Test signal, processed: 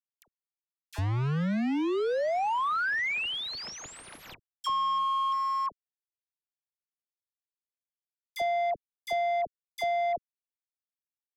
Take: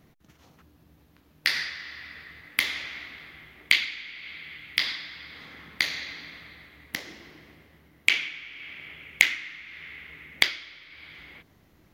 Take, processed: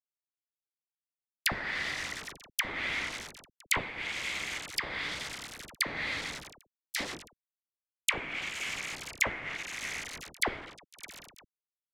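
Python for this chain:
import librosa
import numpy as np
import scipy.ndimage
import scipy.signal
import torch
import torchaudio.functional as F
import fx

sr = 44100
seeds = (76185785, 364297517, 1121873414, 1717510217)

y = fx.quant_companded(x, sr, bits=2)
y = fx.dispersion(y, sr, late='lows', ms=60.0, hz=1000.0)
y = fx.env_lowpass_down(y, sr, base_hz=1200.0, full_db=-20.0)
y = F.gain(torch.from_numpy(y), -2.0).numpy()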